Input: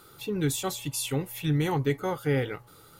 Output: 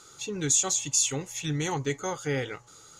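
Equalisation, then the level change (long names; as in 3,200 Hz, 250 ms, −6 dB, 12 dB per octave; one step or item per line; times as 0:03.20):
low-pass with resonance 6,700 Hz, resonance Q 8.7
low-shelf EQ 490 Hz −5.5 dB
0.0 dB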